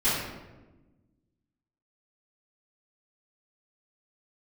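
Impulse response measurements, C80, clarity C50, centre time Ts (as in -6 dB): 2.5 dB, -0.5 dB, 77 ms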